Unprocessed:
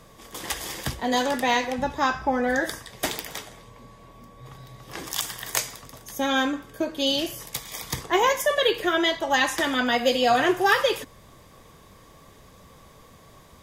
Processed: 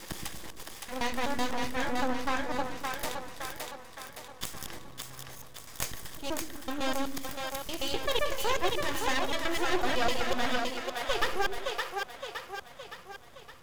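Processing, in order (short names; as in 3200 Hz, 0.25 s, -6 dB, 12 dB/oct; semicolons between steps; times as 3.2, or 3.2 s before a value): slices in reverse order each 0.126 s, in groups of 7; half-wave rectifier; split-band echo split 380 Hz, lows 0.113 s, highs 0.566 s, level -3.5 dB; gain -5 dB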